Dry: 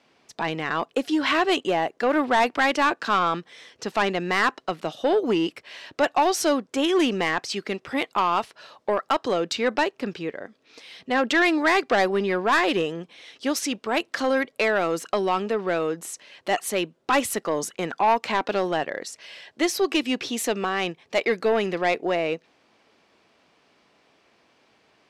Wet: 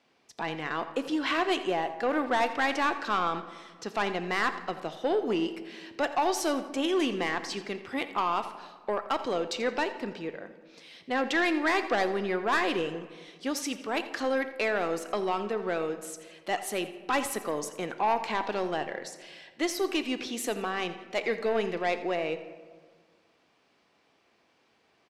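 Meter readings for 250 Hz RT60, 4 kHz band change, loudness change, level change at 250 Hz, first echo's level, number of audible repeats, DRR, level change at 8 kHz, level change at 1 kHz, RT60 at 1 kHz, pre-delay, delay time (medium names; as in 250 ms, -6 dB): 2.0 s, -6.5 dB, -6.0 dB, -6.0 dB, -15.5 dB, 2, 9.0 dB, -6.0 dB, -6.0 dB, 1.5 s, 3 ms, 85 ms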